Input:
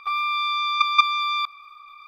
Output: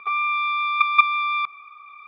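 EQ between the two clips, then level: air absorption 190 m; speaker cabinet 140–3400 Hz, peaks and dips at 180 Hz +10 dB, 410 Hz +10 dB, 640 Hz +5 dB, 2300 Hz +5 dB; +1.5 dB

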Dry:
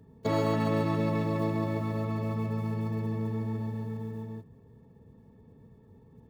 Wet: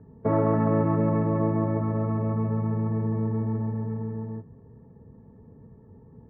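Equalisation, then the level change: LPF 1700 Hz 24 dB/oct; air absorption 360 m; +5.5 dB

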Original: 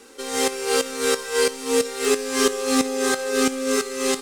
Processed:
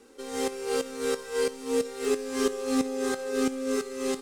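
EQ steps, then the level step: tilt shelf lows +4.5 dB, about 760 Hz; -8.0 dB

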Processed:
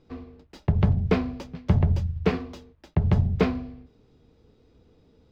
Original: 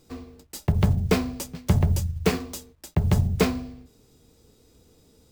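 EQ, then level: air absorption 260 m; 0.0 dB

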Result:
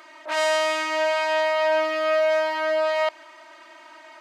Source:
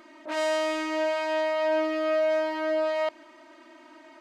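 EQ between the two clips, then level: HPF 700 Hz 12 dB/oct; +7.5 dB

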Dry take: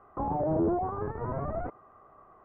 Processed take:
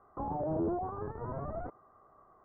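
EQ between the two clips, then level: LPF 1800 Hz 24 dB/oct; -5.5 dB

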